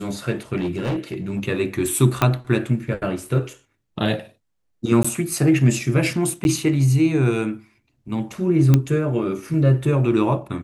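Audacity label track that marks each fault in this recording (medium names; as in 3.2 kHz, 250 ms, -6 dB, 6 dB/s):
0.560000	1.430000	clipped -19.5 dBFS
2.220000	2.220000	pop -4 dBFS
5.030000	5.040000	dropout 15 ms
6.440000	6.450000	dropout 11 ms
8.740000	8.740000	pop -4 dBFS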